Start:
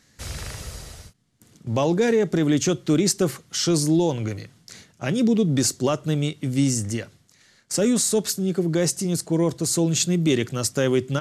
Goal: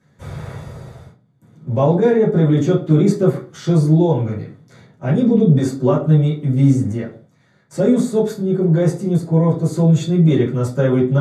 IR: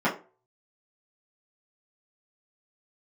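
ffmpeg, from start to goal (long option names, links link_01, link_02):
-filter_complex "[1:a]atrim=start_sample=2205,afade=type=out:start_time=0.22:duration=0.01,atrim=end_sample=10143,asetrate=29988,aresample=44100[link_01];[0:a][link_01]afir=irnorm=-1:irlink=0,volume=-13.5dB"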